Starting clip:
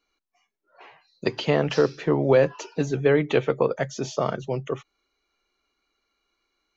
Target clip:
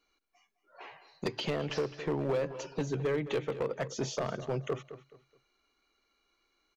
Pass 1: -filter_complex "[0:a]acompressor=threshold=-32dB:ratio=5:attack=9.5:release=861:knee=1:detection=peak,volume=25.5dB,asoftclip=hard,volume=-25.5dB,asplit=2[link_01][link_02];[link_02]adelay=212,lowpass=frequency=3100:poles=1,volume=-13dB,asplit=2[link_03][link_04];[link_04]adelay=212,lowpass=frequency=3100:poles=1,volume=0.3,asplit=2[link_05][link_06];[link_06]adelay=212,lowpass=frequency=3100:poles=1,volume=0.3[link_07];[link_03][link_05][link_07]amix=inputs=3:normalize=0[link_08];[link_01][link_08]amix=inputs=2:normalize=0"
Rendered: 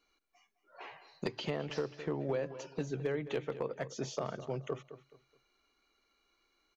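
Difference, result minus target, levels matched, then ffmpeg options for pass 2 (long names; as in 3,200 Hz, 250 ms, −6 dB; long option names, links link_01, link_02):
downward compressor: peak gain reduction +5 dB
-filter_complex "[0:a]acompressor=threshold=-25.5dB:ratio=5:attack=9.5:release=861:knee=1:detection=peak,volume=25.5dB,asoftclip=hard,volume=-25.5dB,asplit=2[link_01][link_02];[link_02]adelay=212,lowpass=frequency=3100:poles=1,volume=-13dB,asplit=2[link_03][link_04];[link_04]adelay=212,lowpass=frequency=3100:poles=1,volume=0.3,asplit=2[link_05][link_06];[link_06]adelay=212,lowpass=frequency=3100:poles=1,volume=0.3[link_07];[link_03][link_05][link_07]amix=inputs=3:normalize=0[link_08];[link_01][link_08]amix=inputs=2:normalize=0"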